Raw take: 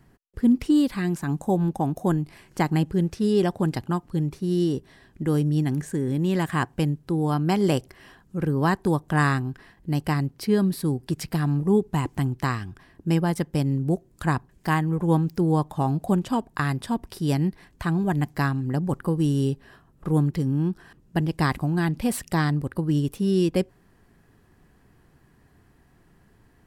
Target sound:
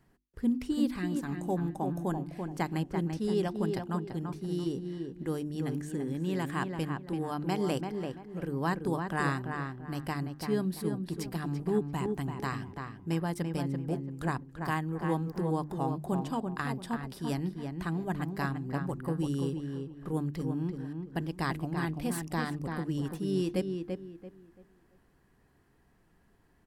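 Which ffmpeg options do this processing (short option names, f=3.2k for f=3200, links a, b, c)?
-filter_complex "[0:a]equalizer=f=110:t=o:w=0.92:g=-4.5,bandreject=f=50:t=h:w=6,bandreject=f=100:t=h:w=6,bandreject=f=150:t=h:w=6,bandreject=f=200:t=h:w=6,bandreject=f=250:t=h:w=6,bandreject=f=300:t=h:w=6,bandreject=f=350:t=h:w=6,asplit=2[a][b];[b]adelay=338,lowpass=f=2.2k:p=1,volume=-5dB,asplit=2[c][d];[d]adelay=338,lowpass=f=2.2k:p=1,volume=0.3,asplit=2[e][f];[f]adelay=338,lowpass=f=2.2k:p=1,volume=0.3,asplit=2[g][h];[h]adelay=338,lowpass=f=2.2k:p=1,volume=0.3[i];[a][c][e][g][i]amix=inputs=5:normalize=0,volume=-8dB"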